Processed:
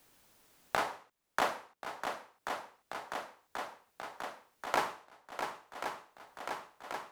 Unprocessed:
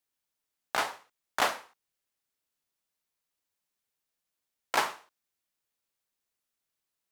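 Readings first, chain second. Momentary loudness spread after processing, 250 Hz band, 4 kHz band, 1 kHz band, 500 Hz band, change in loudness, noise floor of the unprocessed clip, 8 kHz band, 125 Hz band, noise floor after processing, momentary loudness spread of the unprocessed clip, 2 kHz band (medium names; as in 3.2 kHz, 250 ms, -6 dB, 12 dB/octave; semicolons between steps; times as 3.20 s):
13 LU, +1.5 dB, -5.5 dB, -0.5 dB, +1.0 dB, -8.0 dB, under -85 dBFS, -6.0 dB, +2.5 dB, -79 dBFS, 16 LU, -3.0 dB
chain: tilt shelf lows +4.5 dB, about 1.4 kHz; on a send: shuffle delay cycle 1084 ms, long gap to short 1.5:1, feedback 56%, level -15 dB; on the sum: three bands compressed up and down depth 70%; trim +2.5 dB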